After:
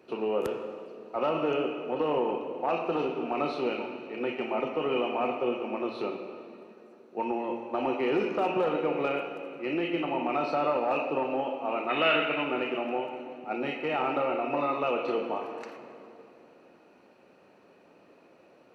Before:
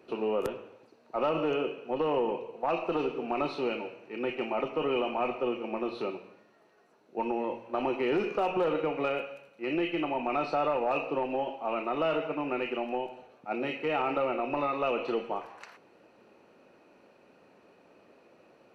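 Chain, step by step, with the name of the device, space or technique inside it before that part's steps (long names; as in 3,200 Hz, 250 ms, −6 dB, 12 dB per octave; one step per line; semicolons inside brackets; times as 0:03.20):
high-pass filter 45 Hz
0:11.89–0:12.44: flat-topped bell 2,400 Hz +13 dB
filtered reverb send (on a send: high-pass filter 170 Hz 24 dB per octave + low-pass filter 5,100 Hz 12 dB per octave + convolution reverb RT60 2.8 s, pre-delay 12 ms, DRR 5.5 dB)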